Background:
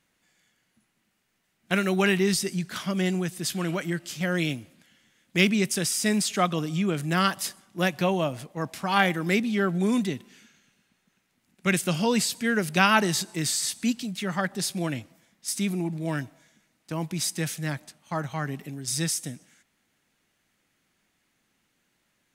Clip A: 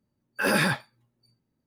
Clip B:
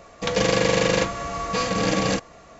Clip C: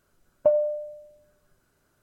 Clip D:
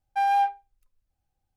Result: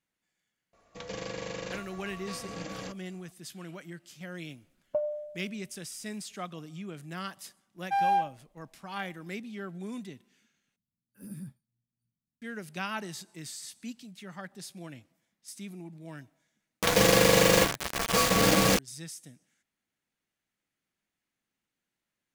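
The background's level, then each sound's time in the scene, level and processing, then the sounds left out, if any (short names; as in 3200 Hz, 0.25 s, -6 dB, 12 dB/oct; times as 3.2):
background -15 dB
0.73 add B -18 dB
4.49 add C -10 dB
7.75 add D -3.5 dB
10.76 replace with A -15.5 dB + EQ curve 120 Hz 0 dB, 190 Hz +4 dB, 740 Hz -29 dB, 4300 Hz -24 dB, 9600 Hz -3 dB
16.6 add B -1.5 dB + bit-crush 4-bit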